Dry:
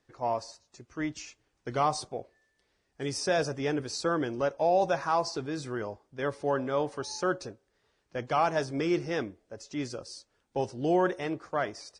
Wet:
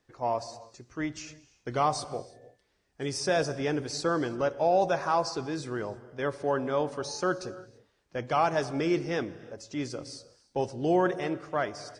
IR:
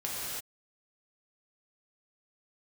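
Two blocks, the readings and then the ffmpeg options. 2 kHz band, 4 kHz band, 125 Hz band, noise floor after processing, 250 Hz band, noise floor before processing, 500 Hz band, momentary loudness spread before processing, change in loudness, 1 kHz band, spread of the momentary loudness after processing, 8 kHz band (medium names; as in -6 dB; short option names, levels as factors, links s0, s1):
+0.5 dB, +0.5 dB, +1.5 dB, -72 dBFS, +1.0 dB, -75 dBFS, +1.0 dB, 15 LU, +1.0 dB, +1.0 dB, 15 LU, +0.5 dB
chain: -filter_complex "[0:a]asplit=2[s0][s1];[1:a]atrim=start_sample=2205,lowshelf=f=460:g=6.5[s2];[s1][s2]afir=irnorm=-1:irlink=0,volume=0.0891[s3];[s0][s3]amix=inputs=2:normalize=0"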